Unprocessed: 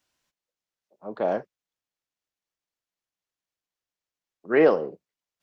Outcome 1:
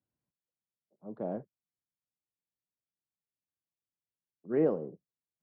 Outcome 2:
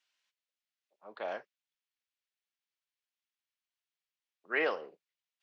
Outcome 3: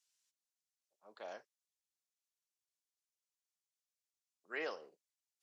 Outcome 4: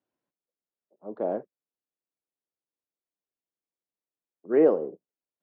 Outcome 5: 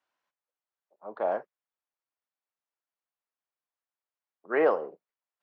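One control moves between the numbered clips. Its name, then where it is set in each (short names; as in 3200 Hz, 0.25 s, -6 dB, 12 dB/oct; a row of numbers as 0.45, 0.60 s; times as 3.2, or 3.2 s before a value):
band-pass, frequency: 140, 2800, 7900, 340, 1000 Hz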